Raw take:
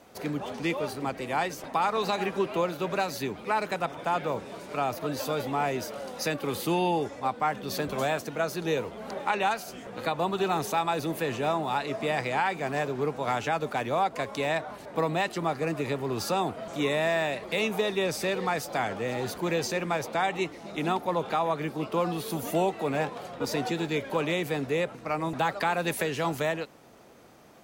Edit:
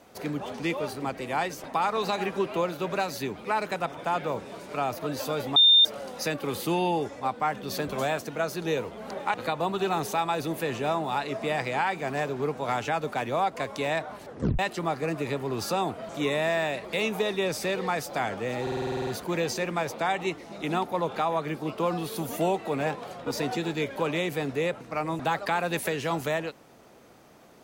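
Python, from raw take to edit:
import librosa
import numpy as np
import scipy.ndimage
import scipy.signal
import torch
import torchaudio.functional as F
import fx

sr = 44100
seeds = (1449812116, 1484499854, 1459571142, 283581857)

y = fx.edit(x, sr, fx.bleep(start_s=5.56, length_s=0.29, hz=3620.0, db=-13.5),
    fx.cut(start_s=9.34, length_s=0.59),
    fx.tape_stop(start_s=14.85, length_s=0.33),
    fx.stutter(start_s=19.21, slice_s=0.05, count=10), tone=tone)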